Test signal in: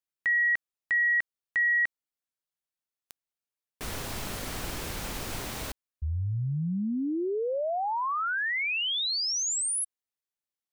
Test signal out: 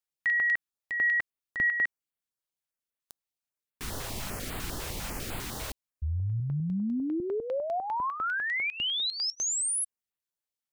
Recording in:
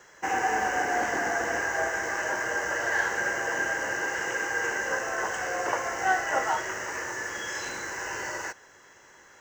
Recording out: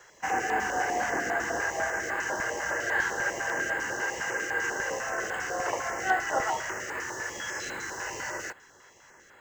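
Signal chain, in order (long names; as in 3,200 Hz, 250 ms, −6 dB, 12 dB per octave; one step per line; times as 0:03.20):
notch on a step sequencer 10 Hz 240–5,800 Hz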